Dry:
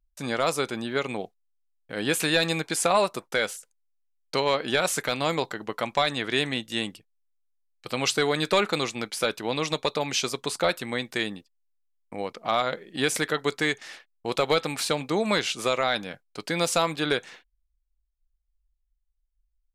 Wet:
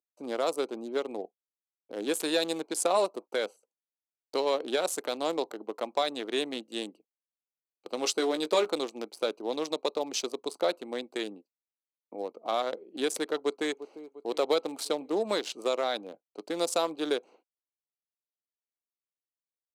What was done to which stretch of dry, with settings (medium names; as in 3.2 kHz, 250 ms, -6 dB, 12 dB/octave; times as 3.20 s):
8.00–8.74 s: doubling 17 ms -6.5 dB
13.37–13.79 s: echo throw 350 ms, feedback 55%, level -12.5 dB
whole clip: local Wiener filter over 25 samples; high-pass 290 Hz 24 dB/octave; peaking EQ 1.9 kHz -10 dB 1.9 oct